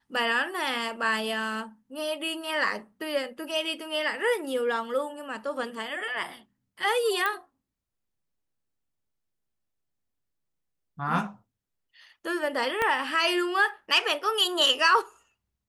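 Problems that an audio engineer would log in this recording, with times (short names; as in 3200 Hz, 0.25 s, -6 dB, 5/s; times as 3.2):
7.26 pop -14 dBFS
12.82 pop -13 dBFS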